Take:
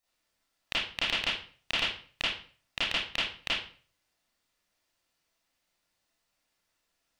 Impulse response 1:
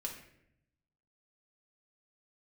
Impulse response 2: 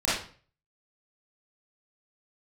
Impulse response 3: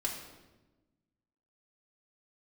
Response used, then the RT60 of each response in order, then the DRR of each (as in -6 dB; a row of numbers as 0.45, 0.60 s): 2; 0.75, 0.45, 1.1 s; -0.5, -10.0, -2.5 dB